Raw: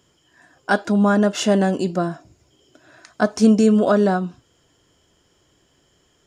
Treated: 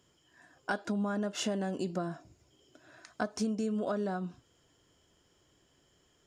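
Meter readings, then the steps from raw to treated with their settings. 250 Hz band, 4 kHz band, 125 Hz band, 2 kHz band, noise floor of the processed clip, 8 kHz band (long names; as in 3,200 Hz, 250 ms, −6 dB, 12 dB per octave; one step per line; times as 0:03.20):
−16.5 dB, −11.5 dB, −15.5 dB, −14.5 dB, −70 dBFS, −11.5 dB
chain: downward compressor 8 to 1, threshold −22 dBFS, peak gain reduction 13 dB
level −7.5 dB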